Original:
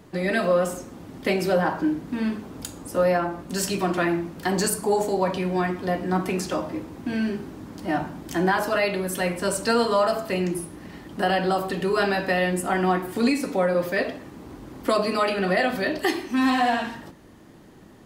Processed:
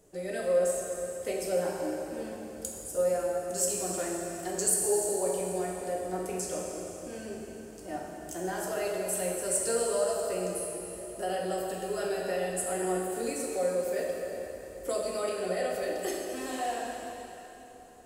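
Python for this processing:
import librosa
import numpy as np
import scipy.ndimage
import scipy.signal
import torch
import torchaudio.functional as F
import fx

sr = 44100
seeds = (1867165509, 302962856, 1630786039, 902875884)

y = fx.graphic_eq(x, sr, hz=(125, 250, 500, 1000, 2000, 4000, 8000), db=(-10, -12, 6, -11, -7, -9, 11))
y = fx.rev_plate(y, sr, seeds[0], rt60_s=3.5, hf_ratio=0.9, predelay_ms=0, drr_db=-1.0)
y = y * 10.0 ** (-8.0 / 20.0)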